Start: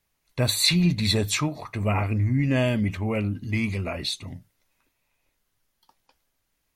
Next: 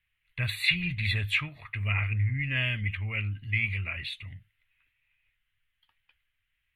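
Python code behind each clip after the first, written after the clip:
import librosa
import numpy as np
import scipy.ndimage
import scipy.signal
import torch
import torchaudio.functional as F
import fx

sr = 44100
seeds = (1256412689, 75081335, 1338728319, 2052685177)

y = fx.curve_eq(x, sr, hz=(110.0, 220.0, 340.0, 870.0, 1900.0, 3000.0, 5700.0, 10000.0), db=(0, -16, -18, -15, 7, 7, -27, -13))
y = y * librosa.db_to_amplitude(-3.0)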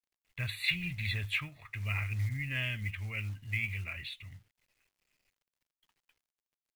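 y = fx.quant_companded(x, sr, bits=6)
y = y * librosa.db_to_amplitude(-6.0)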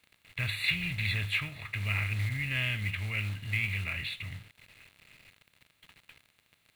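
y = fx.bin_compress(x, sr, power=0.6)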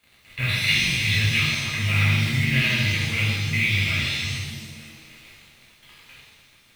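y = fx.rev_shimmer(x, sr, seeds[0], rt60_s=1.3, semitones=7, shimmer_db=-8, drr_db=-7.0)
y = y * librosa.db_to_amplitude(2.0)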